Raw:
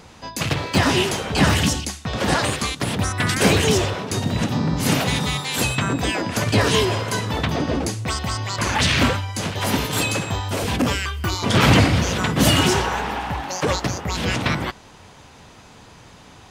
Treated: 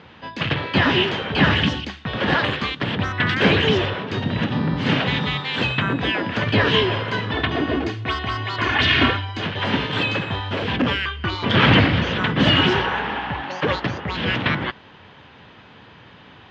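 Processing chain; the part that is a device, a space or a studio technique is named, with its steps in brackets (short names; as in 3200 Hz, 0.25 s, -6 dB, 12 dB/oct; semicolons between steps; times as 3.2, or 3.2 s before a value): 7.31–9.45 comb 2.8 ms, depth 56%; guitar cabinet (speaker cabinet 88–3600 Hz, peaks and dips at 710 Hz -3 dB, 1700 Hz +5 dB, 3100 Hz +5 dB)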